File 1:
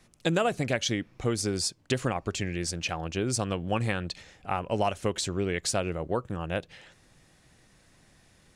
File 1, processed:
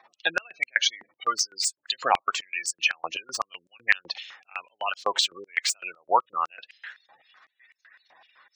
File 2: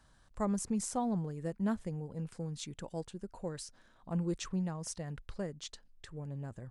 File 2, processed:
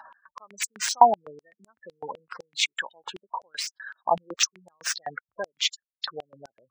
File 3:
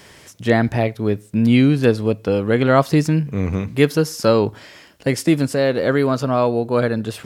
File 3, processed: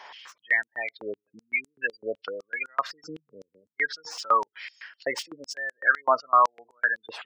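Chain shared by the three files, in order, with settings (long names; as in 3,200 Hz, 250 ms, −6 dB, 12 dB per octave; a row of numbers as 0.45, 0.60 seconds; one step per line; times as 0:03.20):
running median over 5 samples
gate on every frequency bin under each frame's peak −20 dB strong
high-pass on a step sequencer 7.9 Hz 860–7,700 Hz
loudness normalisation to −27 LKFS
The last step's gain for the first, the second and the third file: +7.0, +19.5, −2.0 decibels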